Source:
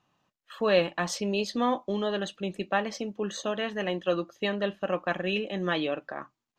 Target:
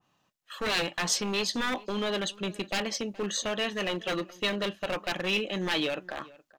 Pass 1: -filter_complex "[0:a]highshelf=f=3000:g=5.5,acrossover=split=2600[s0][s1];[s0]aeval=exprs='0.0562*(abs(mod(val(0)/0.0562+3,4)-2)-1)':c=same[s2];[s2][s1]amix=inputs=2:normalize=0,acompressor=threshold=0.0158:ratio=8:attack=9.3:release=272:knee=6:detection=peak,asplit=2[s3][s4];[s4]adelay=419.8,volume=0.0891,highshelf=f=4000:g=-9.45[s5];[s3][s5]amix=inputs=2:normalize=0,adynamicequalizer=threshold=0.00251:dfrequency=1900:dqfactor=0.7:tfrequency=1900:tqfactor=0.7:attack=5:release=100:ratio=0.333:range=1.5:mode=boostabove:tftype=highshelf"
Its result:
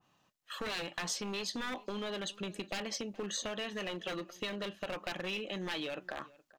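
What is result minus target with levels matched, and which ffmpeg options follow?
compression: peak gain reduction +11.5 dB
-filter_complex "[0:a]highshelf=f=3000:g=5.5,acrossover=split=2600[s0][s1];[s0]aeval=exprs='0.0562*(abs(mod(val(0)/0.0562+3,4)-2)-1)':c=same[s2];[s2][s1]amix=inputs=2:normalize=0,asplit=2[s3][s4];[s4]adelay=419.8,volume=0.0891,highshelf=f=4000:g=-9.45[s5];[s3][s5]amix=inputs=2:normalize=0,adynamicequalizer=threshold=0.00251:dfrequency=1900:dqfactor=0.7:tfrequency=1900:tqfactor=0.7:attack=5:release=100:ratio=0.333:range=1.5:mode=boostabove:tftype=highshelf"

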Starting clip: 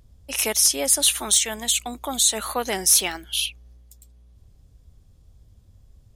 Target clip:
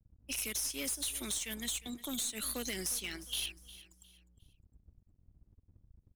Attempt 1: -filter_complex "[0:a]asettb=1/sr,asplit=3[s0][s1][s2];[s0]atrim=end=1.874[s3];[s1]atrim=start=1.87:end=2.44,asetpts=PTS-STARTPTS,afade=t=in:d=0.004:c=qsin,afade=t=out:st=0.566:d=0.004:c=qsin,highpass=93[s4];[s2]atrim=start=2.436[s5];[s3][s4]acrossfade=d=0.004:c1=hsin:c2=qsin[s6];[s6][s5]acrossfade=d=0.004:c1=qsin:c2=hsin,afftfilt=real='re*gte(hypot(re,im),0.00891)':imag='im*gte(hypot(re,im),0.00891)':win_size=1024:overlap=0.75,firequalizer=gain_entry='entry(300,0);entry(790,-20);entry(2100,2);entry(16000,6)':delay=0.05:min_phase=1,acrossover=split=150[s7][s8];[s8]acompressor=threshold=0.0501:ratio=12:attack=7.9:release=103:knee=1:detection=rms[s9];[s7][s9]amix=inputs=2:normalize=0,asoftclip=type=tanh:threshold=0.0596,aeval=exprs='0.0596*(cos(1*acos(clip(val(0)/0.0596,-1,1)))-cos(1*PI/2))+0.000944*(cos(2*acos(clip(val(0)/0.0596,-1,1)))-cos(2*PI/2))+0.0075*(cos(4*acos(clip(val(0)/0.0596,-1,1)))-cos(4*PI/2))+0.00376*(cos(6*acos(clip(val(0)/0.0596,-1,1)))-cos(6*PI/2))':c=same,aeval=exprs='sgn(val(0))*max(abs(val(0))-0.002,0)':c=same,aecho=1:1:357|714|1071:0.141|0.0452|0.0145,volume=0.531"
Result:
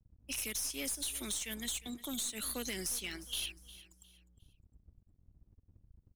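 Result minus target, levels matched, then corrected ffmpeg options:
saturation: distortion +16 dB
-filter_complex "[0:a]asettb=1/sr,asplit=3[s0][s1][s2];[s0]atrim=end=1.874[s3];[s1]atrim=start=1.87:end=2.44,asetpts=PTS-STARTPTS,afade=t=in:d=0.004:c=qsin,afade=t=out:st=0.566:d=0.004:c=qsin,highpass=93[s4];[s2]atrim=start=2.436[s5];[s3][s4]acrossfade=d=0.004:c1=hsin:c2=qsin[s6];[s6][s5]acrossfade=d=0.004:c1=qsin:c2=hsin,afftfilt=real='re*gte(hypot(re,im),0.00891)':imag='im*gte(hypot(re,im),0.00891)':win_size=1024:overlap=0.75,firequalizer=gain_entry='entry(300,0);entry(790,-20);entry(2100,2);entry(16000,6)':delay=0.05:min_phase=1,acrossover=split=150[s7][s8];[s8]acompressor=threshold=0.0501:ratio=12:attack=7.9:release=103:knee=1:detection=rms[s9];[s7][s9]amix=inputs=2:normalize=0,asoftclip=type=tanh:threshold=0.211,aeval=exprs='0.0596*(cos(1*acos(clip(val(0)/0.0596,-1,1)))-cos(1*PI/2))+0.000944*(cos(2*acos(clip(val(0)/0.0596,-1,1)))-cos(2*PI/2))+0.0075*(cos(4*acos(clip(val(0)/0.0596,-1,1)))-cos(4*PI/2))+0.00376*(cos(6*acos(clip(val(0)/0.0596,-1,1)))-cos(6*PI/2))':c=same,aeval=exprs='sgn(val(0))*max(abs(val(0))-0.002,0)':c=same,aecho=1:1:357|714|1071:0.141|0.0452|0.0145,volume=0.531"

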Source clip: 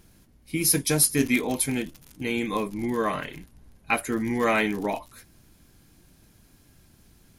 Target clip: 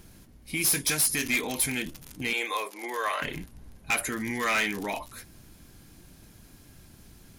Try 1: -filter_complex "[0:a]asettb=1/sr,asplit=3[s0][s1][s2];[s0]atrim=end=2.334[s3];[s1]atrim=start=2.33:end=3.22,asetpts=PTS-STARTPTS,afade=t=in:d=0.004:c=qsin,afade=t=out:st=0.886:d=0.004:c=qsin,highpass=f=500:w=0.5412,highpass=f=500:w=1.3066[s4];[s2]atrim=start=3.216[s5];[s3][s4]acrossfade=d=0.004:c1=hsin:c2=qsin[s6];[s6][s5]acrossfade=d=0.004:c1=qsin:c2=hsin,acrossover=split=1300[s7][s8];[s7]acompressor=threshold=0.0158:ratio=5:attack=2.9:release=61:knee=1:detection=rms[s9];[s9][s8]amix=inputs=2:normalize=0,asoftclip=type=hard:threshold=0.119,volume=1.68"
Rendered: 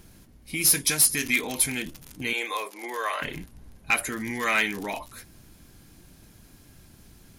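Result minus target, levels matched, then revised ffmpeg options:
hard clipper: distortion -6 dB
-filter_complex "[0:a]asettb=1/sr,asplit=3[s0][s1][s2];[s0]atrim=end=2.334[s3];[s1]atrim=start=2.33:end=3.22,asetpts=PTS-STARTPTS,afade=t=in:d=0.004:c=qsin,afade=t=out:st=0.886:d=0.004:c=qsin,highpass=f=500:w=0.5412,highpass=f=500:w=1.3066[s4];[s2]atrim=start=3.216[s5];[s3][s4]acrossfade=d=0.004:c1=hsin:c2=qsin[s6];[s6][s5]acrossfade=d=0.004:c1=qsin:c2=hsin,acrossover=split=1300[s7][s8];[s7]acompressor=threshold=0.0158:ratio=5:attack=2.9:release=61:knee=1:detection=rms[s9];[s9][s8]amix=inputs=2:normalize=0,asoftclip=type=hard:threshold=0.0531,volume=1.68"

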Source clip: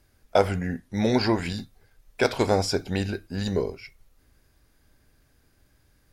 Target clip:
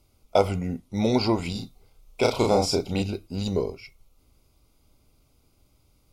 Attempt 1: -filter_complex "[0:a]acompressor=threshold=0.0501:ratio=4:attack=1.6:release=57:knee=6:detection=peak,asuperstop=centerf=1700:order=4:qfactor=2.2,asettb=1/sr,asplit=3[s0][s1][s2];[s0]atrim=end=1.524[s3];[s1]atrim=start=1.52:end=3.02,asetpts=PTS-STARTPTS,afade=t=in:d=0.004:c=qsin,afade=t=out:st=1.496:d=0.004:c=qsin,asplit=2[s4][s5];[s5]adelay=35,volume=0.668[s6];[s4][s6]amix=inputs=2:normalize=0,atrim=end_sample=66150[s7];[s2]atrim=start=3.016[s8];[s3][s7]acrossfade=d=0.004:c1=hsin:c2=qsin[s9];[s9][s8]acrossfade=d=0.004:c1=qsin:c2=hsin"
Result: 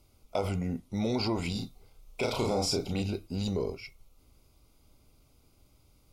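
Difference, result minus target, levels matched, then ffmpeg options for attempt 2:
compression: peak gain reduction +12.5 dB
-filter_complex "[0:a]asuperstop=centerf=1700:order=4:qfactor=2.2,asettb=1/sr,asplit=3[s0][s1][s2];[s0]atrim=end=1.524[s3];[s1]atrim=start=1.52:end=3.02,asetpts=PTS-STARTPTS,afade=t=in:d=0.004:c=qsin,afade=t=out:st=1.496:d=0.004:c=qsin,asplit=2[s4][s5];[s5]adelay=35,volume=0.668[s6];[s4][s6]amix=inputs=2:normalize=0,atrim=end_sample=66150[s7];[s2]atrim=start=3.016[s8];[s3][s7]acrossfade=d=0.004:c1=hsin:c2=qsin[s9];[s9][s8]acrossfade=d=0.004:c1=qsin:c2=hsin"

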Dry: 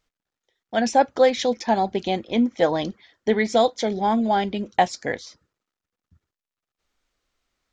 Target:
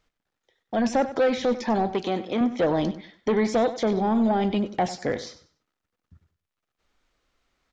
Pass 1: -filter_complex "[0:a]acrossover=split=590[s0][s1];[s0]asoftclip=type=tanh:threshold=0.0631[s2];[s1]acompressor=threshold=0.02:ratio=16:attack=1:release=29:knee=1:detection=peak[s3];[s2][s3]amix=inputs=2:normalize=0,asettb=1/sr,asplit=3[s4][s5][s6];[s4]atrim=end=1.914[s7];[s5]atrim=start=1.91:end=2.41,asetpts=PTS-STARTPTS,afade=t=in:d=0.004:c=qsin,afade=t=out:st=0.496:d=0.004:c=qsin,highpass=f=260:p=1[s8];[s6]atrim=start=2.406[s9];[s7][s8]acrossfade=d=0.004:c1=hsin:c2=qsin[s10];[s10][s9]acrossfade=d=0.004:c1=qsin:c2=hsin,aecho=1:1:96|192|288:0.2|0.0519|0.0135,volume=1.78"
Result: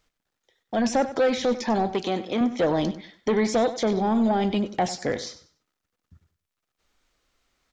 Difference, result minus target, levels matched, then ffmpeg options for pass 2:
8 kHz band +5.0 dB
-filter_complex "[0:a]acrossover=split=590[s0][s1];[s0]asoftclip=type=tanh:threshold=0.0631[s2];[s1]acompressor=threshold=0.02:ratio=16:attack=1:release=29:knee=1:detection=peak,highshelf=f=5400:g=-9[s3];[s2][s3]amix=inputs=2:normalize=0,asettb=1/sr,asplit=3[s4][s5][s6];[s4]atrim=end=1.914[s7];[s5]atrim=start=1.91:end=2.41,asetpts=PTS-STARTPTS,afade=t=in:d=0.004:c=qsin,afade=t=out:st=0.496:d=0.004:c=qsin,highpass=f=260:p=1[s8];[s6]atrim=start=2.406[s9];[s7][s8]acrossfade=d=0.004:c1=hsin:c2=qsin[s10];[s10][s9]acrossfade=d=0.004:c1=qsin:c2=hsin,aecho=1:1:96|192|288:0.2|0.0519|0.0135,volume=1.78"

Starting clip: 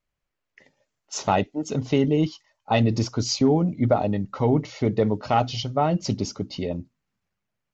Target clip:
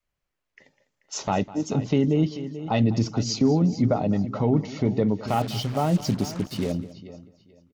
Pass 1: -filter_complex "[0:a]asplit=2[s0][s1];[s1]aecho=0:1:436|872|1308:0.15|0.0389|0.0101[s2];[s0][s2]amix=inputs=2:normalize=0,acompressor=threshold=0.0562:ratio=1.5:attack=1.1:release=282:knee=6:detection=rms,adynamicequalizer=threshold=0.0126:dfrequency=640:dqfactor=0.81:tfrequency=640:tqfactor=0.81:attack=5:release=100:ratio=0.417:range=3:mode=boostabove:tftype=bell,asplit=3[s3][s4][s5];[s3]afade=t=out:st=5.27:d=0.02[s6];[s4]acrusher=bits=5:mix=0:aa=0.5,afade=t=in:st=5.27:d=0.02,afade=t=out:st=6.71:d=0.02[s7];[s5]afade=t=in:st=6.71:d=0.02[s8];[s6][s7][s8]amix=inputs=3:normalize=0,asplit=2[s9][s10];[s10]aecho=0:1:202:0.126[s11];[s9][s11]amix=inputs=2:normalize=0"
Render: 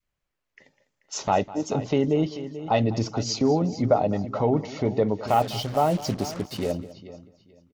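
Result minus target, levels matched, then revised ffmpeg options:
500 Hz band +4.0 dB
-filter_complex "[0:a]asplit=2[s0][s1];[s1]aecho=0:1:436|872|1308:0.15|0.0389|0.0101[s2];[s0][s2]amix=inputs=2:normalize=0,acompressor=threshold=0.0562:ratio=1.5:attack=1.1:release=282:knee=6:detection=rms,adynamicequalizer=threshold=0.0126:dfrequency=190:dqfactor=0.81:tfrequency=190:tqfactor=0.81:attack=5:release=100:ratio=0.417:range=3:mode=boostabove:tftype=bell,asplit=3[s3][s4][s5];[s3]afade=t=out:st=5.27:d=0.02[s6];[s4]acrusher=bits=5:mix=0:aa=0.5,afade=t=in:st=5.27:d=0.02,afade=t=out:st=6.71:d=0.02[s7];[s5]afade=t=in:st=6.71:d=0.02[s8];[s6][s7][s8]amix=inputs=3:normalize=0,asplit=2[s9][s10];[s10]aecho=0:1:202:0.126[s11];[s9][s11]amix=inputs=2:normalize=0"

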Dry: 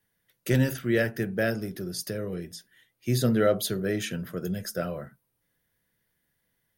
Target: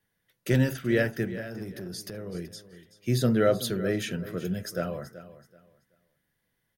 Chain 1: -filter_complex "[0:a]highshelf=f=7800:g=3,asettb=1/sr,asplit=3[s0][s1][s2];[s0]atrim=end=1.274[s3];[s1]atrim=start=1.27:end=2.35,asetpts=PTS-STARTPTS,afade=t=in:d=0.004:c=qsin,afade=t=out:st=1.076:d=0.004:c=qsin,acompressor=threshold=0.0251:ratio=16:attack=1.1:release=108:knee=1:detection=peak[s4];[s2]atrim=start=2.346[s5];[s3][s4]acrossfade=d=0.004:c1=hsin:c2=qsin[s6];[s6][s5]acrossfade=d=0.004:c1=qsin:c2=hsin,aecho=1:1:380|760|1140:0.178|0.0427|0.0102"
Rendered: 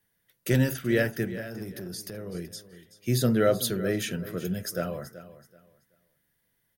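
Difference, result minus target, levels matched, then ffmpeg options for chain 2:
8 kHz band +4.0 dB
-filter_complex "[0:a]highshelf=f=7800:g=-6,asettb=1/sr,asplit=3[s0][s1][s2];[s0]atrim=end=1.274[s3];[s1]atrim=start=1.27:end=2.35,asetpts=PTS-STARTPTS,afade=t=in:d=0.004:c=qsin,afade=t=out:st=1.076:d=0.004:c=qsin,acompressor=threshold=0.0251:ratio=16:attack=1.1:release=108:knee=1:detection=peak[s4];[s2]atrim=start=2.346[s5];[s3][s4]acrossfade=d=0.004:c1=hsin:c2=qsin[s6];[s6][s5]acrossfade=d=0.004:c1=qsin:c2=hsin,aecho=1:1:380|760|1140:0.178|0.0427|0.0102"

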